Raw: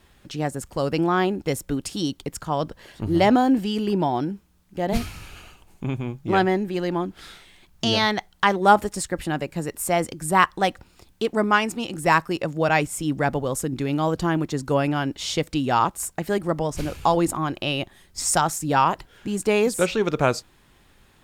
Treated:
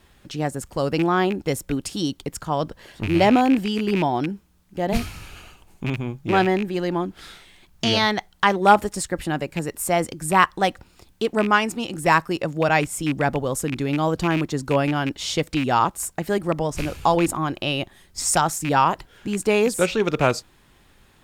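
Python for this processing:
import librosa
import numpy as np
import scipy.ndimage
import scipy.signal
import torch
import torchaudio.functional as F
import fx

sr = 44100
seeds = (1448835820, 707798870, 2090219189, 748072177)

y = fx.rattle_buzz(x, sr, strikes_db=-26.0, level_db=-19.0)
y = y * librosa.db_to_amplitude(1.0)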